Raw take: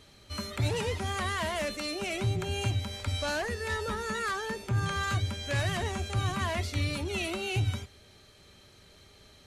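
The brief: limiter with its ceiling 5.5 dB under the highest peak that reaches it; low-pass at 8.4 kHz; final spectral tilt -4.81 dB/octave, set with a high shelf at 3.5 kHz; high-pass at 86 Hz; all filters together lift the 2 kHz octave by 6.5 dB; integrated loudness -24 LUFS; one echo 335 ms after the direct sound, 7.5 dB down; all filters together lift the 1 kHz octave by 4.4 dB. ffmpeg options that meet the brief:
-af "highpass=86,lowpass=8400,equalizer=f=1000:t=o:g=3.5,equalizer=f=2000:t=o:g=8.5,highshelf=f=3500:g=-5,alimiter=limit=0.0841:level=0:latency=1,aecho=1:1:335:0.422,volume=2"

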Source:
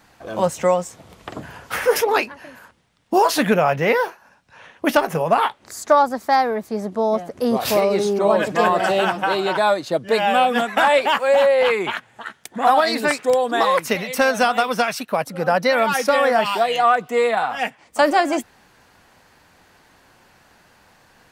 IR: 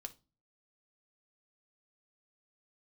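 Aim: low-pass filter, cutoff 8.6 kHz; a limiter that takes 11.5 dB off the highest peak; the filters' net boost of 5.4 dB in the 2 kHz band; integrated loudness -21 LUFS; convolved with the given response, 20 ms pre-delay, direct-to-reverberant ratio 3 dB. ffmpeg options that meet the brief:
-filter_complex "[0:a]lowpass=8600,equalizer=f=2000:t=o:g=7,alimiter=limit=0.316:level=0:latency=1,asplit=2[s0][s1];[1:a]atrim=start_sample=2205,adelay=20[s2];[s1][s2]afir=irnorm=-1:irlink=0,volume=1.19[s3];[s0][s3]amix=inputs=2:normalize=0,volume=0.75"

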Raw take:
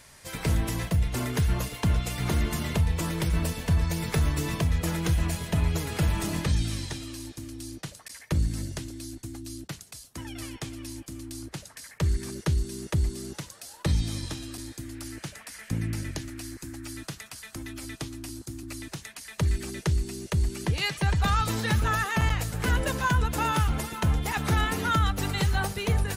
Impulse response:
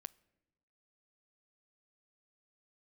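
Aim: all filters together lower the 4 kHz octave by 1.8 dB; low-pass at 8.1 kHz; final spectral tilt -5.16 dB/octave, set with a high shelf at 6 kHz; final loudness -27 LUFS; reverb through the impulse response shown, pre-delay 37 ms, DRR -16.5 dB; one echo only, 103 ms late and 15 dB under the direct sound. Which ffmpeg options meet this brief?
-filter_complex "[0:a]lowpass=8100,equalizer=f=4000:t=o:g=-4,highshelf=f=6000:g=5.5,aecho=1:1:103:0.178,asplit=2[s0][s1];[1:a]atrim=start_sample=2205,adelay=37[s2];[s1][s2]afir=irnorm=-1:irlink=0,volume=12.6[s3];[s0][s3]amix=inputs=2:normalize=0,volume=0.188"

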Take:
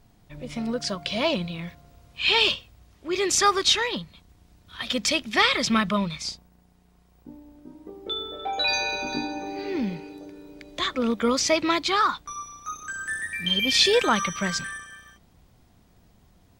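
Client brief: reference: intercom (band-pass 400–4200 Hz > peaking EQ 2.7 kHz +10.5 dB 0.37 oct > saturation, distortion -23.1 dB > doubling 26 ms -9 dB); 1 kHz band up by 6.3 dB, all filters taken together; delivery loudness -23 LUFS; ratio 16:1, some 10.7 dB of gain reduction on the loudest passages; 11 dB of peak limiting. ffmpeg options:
-filter_complex "[0:a]equalizer=f=1000:t=o:g=8,acompressor=threshold=0.0891:ratio=16,alimiter=limit=0.0794:level=0:latency=1,highpass=400,lowpass=4200,equalizer=f=2700:t=o:w=0.37:g=10.5,asoftclip=threshold=0.106,asplit=2[s0][s1];[s1]adelay=26,volume=0.355[s2];[s0][s2]amix=inputs=2:normalize=0,volume=2.37"

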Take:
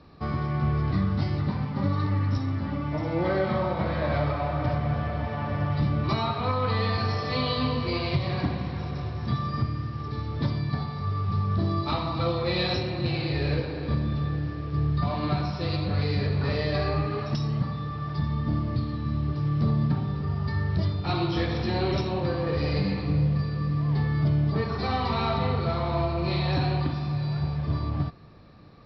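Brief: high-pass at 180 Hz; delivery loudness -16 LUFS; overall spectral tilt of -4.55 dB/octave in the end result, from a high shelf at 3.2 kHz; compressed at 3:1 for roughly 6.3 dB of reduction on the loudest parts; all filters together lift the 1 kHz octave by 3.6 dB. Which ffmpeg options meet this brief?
-af "highpass=180,equalizer=f=1000:t=o:g=4,highshelf=f=3200:g=5,acompressor=threshold=0.0316:ratio=3,volume=7.08"

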